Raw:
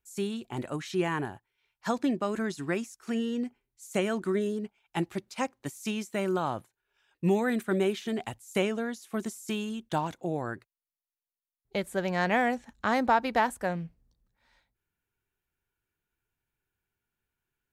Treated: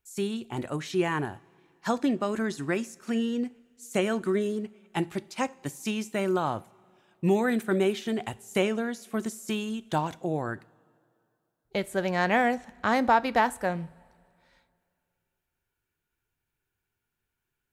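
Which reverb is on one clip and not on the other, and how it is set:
coupled-rooms reverb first 0.37 s, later 2.5 s, from −18 dB, DRR 16 dB
level +2 dB

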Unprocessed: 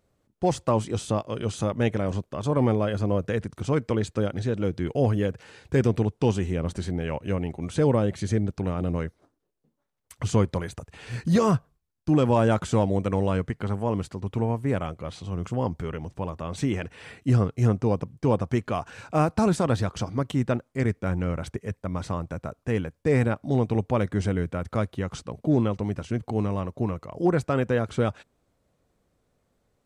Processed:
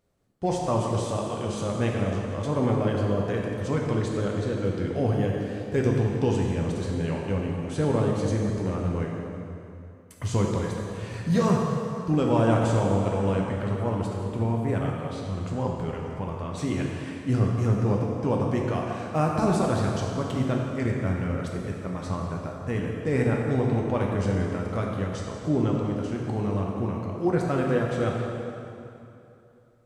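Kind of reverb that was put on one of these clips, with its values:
dense smooth reverb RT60 2.8 s, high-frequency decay 0.8×, DRR −1.5 dB
level −4 dB

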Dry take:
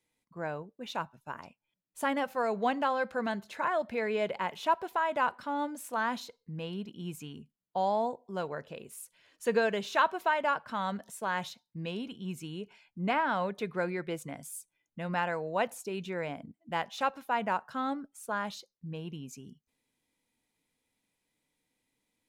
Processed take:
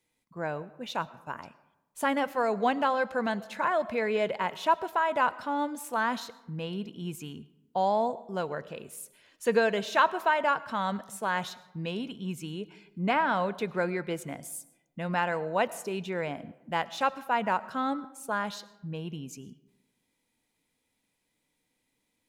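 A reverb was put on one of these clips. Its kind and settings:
comb and all-pass reverb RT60 1 s, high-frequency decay 0.5×, pre-delay 65 ms, DRR 18.5 dB
level +3 dB

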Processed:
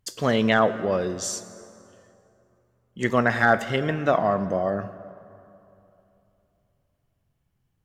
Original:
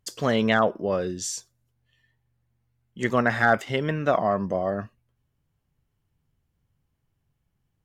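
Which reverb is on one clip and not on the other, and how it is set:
dense smooth reverb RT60 2.9 s, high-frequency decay 0.6×, DRR 13 dB
level +1 dB

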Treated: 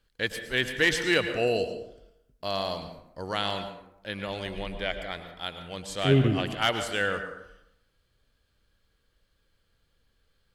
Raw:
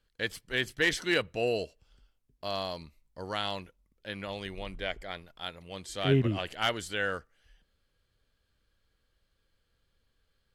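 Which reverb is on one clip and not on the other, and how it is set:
dense smooth reverb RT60 0.79 s, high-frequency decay 0.55×, pre-delay 95 ms, DRR 8.5 dB
level +3.5 dB

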